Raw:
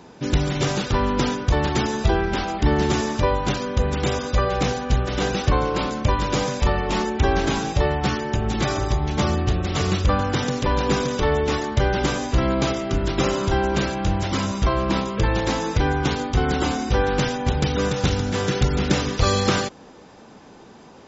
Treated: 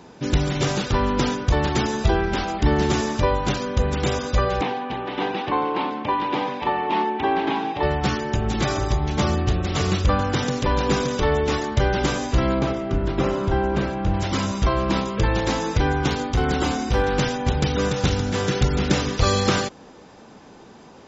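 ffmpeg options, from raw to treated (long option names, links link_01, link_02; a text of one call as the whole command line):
ffmpeg -i in.wav -filter_complex "[0:a]asettb=1/sr,asplit=3[link_01][link_02][link_03];[link_01]atrim=end=4.614[link_04];[link_02]atrim=start=4.61:end=7.83,asetpts=PTS-STARTPTS,afade=type=in:duration=0.004:curve=qsin,afade=type=out:start_time=3.216:duration=0.004:curve=qsin,highpass=280,equalizer=frequency=290:width_type=q:width=4:gain=4,equalizer=frequency=550:width_type=q:width=4:gain=-7,equalizer=frequency=880:width_type=q:width=4:gain=8,equalizer=frequency=1400:width_type=q:width=4:gain=-6,lowpass=frequency=3400:width=0.5412,lowpass=frequency=3400:width=1.3066[link_05];[link_03]atrim=start=7.826[link_06];[link_04][link_05]acrossfade=duration=0.004:curve1=hsin:curve2=qsin[link_07];[link_07][link_06]acrossfade=duration=0.004:curve1=qsin:curve2=hsin,asettb=1/sr,asplit=3[link_08][link_09][link_10];[link_08]atrim=end=12.594[link_11];[link_09]atrim=start=12.59:end=14.14,asetpts=PTS-STARTPTS,afade=type=in:duration=0.004:curve=qsin,afade=type=out:start_time=1.546:duration=0.004:curve=qsin,lowpass=frequency=1500:poles=1[link_12];[link_10]atrim=start=14.136[link_13];[link_11][link_12]acrossfade=duration=0.004:curve1=hsin:curve2=qsin[link_14];[link_14][link_13]acrossfade=duration=0.004:curve1=qsin:curve2=hsin,asettb=1/sr,asplit=3[link_15][link_16][link_17];[link_15]atrim=end=16.104[link_18];[link_16]atrim=start=16.1:end=17.17,asetpts=PTS-STARTPTS,afade=type=in:duration=0.004:curve=qsin,afade=type=out:start_time=1.066:duration=0.004:curve=qsin,volume=13.5dB,asoftclip=hard,volume=-13.5dB[link_19];[link_17]atrim=start=17.166[link_20];[link_18][link_19]acrossfade=duration=0.004:curve1=hsin:curve2=qsin[link_21];[link_21][link_20]acrossfade=duration=0.004:curve1=qsin:curve2=hsin" out.wav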